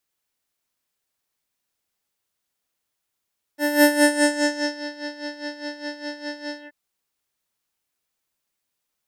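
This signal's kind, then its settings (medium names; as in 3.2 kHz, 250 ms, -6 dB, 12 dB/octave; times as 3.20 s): synth patch with tremolo D5, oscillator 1 triangle, oscillator 2 square, interval +19 st, detune 9 cents, oscillator 2 level -7 dB, sub -2.5 dB, noise -29.5 dB, filter lowpass, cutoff 1.9 kHz, Q 3, filter envelope 3 oct, filter decay 1.27 s, filter sustain 45%, attack 171 ms, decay 1.09 s, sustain -18 dB, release 0.14 s, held 2.99 s, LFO 4.9 Hz, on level 13 dB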